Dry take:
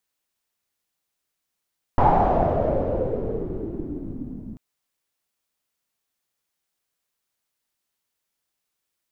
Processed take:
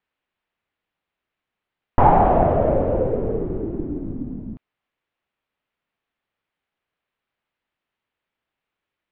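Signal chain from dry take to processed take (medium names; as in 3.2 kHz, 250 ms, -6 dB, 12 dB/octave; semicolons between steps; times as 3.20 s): low-pass 3 kHz 24 dB/octave; trim +4 dB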